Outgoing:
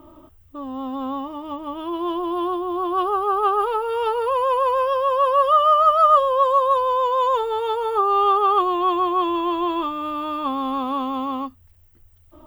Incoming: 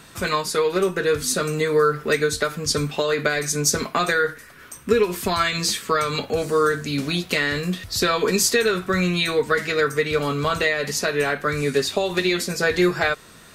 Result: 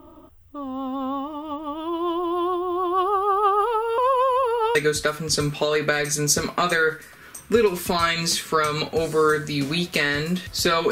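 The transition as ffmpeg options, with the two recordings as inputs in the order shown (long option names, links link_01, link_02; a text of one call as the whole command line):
ffmpeg -i cue0.wav -i cue1.wav -filter_complex "[0:a]apad=whole_dur=10.91,atrim=end=10.91,asplit=2[link_01][link_02];[link_01]atrim=end=3.982[link_03];[link_02]atrim=start=3.978:end=4.752,asetpts=PTS-STARTPTS,areverse[link_04];[1:a]atrim=start=2.118:end=8.28[link_05];[link_03][link_04]acrossfade=duration=0.004:curve1=hsin:curve2=hsin[link_06];[link_06][link_05]acrossfade=duration=0.004:curve1=hsin:curve2=hsin" out.wav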